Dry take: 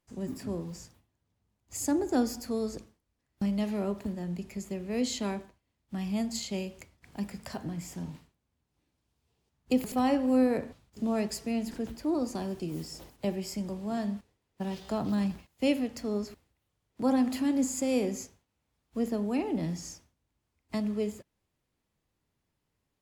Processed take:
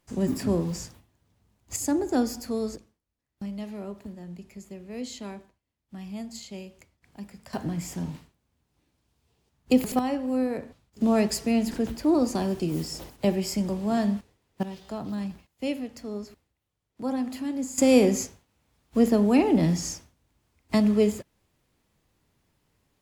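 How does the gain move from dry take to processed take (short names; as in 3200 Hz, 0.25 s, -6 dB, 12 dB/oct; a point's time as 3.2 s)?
+10 dB
from 1.76 s +2.5 dB
from 2.76 s -5.5 dB
from 7.53 s +6 dB
from 9.99 s -2 dB
from 11.01 s +7.5 dB
from 14.63 s -3 dB
from 17.78 s +10 dB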